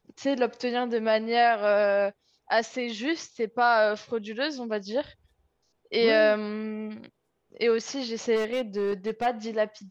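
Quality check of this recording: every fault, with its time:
0:08.35–0:09.27: clipping −23 dBFS

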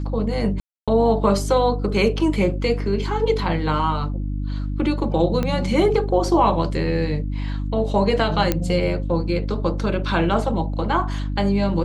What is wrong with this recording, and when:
mains hum 50 Hz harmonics 6 −25 dBFS
0:00.60–0:00.88: drop-out 276 ms
0:05.43: click −11 dBFS
0:08.52: click −5 dBFS

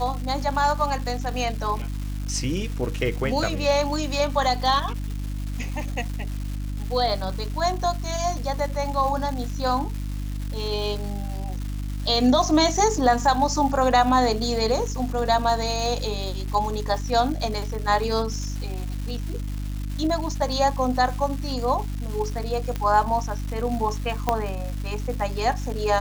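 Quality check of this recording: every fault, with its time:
surface crackle 540 per second −32 dBFS
mains hum 50 Hz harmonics 6 −29 dBFS
0:22.76: click −14 dBFS
0:24.29: click −7 dBFS

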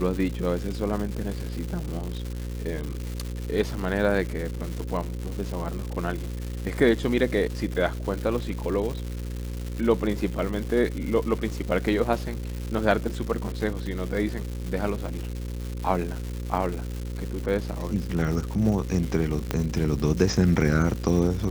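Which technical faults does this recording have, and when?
mains buzz 60 Hz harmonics 9 −32 dBFS
surface crackle 330 per second −31 dBFS
0:19.51: click −10 dBFS

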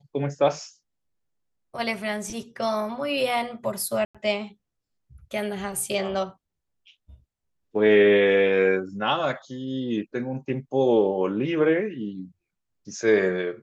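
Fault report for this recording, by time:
0:04.05–0:04.15: drop-out 96 ms

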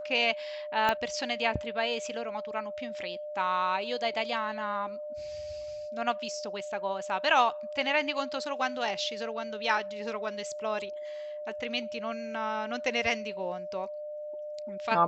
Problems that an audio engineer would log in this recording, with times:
whistle 600 Hz −36 dBFS
0:00.89: click −13 dBFS

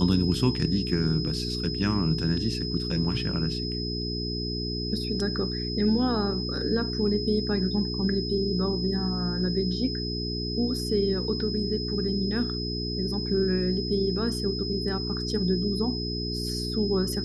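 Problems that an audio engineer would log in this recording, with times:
mains hum 60 Hz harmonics 7 −32 dBFS
whistle 5,100 Hz −33 dBFS

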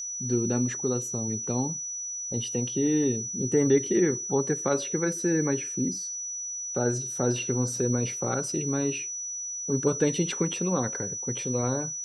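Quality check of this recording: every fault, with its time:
whistle 5,900 Hz −32 dBFS

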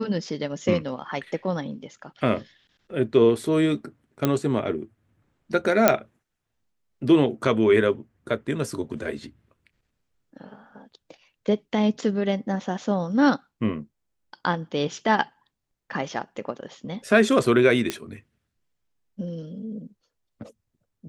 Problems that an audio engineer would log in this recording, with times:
0:04.25: click −8 dBFS
0:05.88: click −1 dBFS
0:17.90: click −10 dBFS

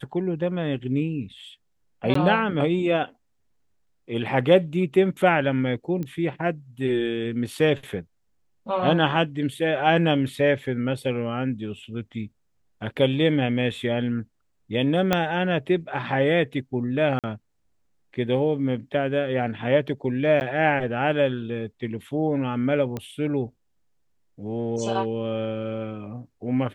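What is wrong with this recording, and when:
0:02.14–0:02.15: drop-out 14 ms
0:06.03: click −20 dBFS
0:15.13: click −6 dBFS
0:17.19–0:17.24: drop-out 47 ms
0:20.40–0:20.41: drop-out 9.9 ms
0:22.97: click −17 dBFS

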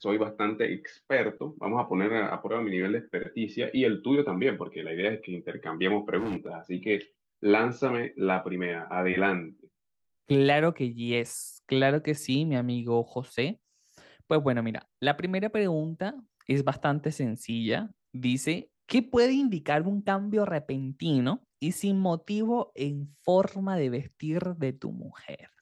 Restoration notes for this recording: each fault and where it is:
0:06.18–0:06.46: clipping −28.5 dBFS

